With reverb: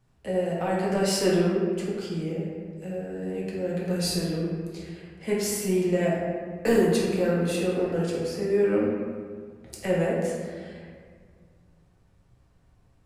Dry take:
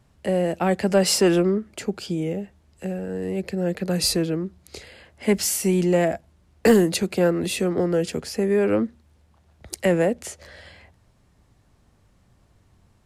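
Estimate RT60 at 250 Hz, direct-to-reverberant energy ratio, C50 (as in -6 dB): 2.4 s, -5.5 dB, 0.0 dB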